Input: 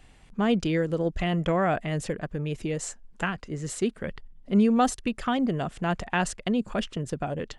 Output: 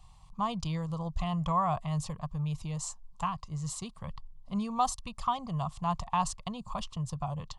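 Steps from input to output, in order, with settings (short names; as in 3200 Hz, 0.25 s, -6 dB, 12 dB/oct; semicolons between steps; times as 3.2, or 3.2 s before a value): EQ curve 150 Hz 0 dB, 270 Hz -21 dB, 410 Hz -23 dB, 1100 Hz +8 dB, 1500 Hz -21 dB, 4300 Hz -1 dB, 9900 Hz -4 dB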